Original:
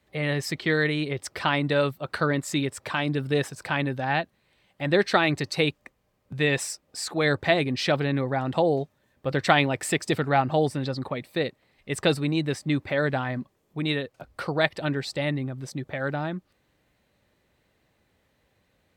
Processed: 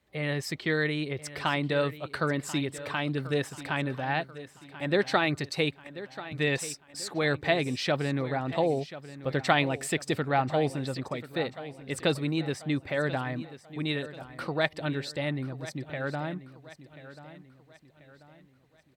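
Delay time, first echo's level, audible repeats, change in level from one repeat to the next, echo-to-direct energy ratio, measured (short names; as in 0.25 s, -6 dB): 1.037 s, -15.0 dB, 3, -7.5 dB, -14.0 dB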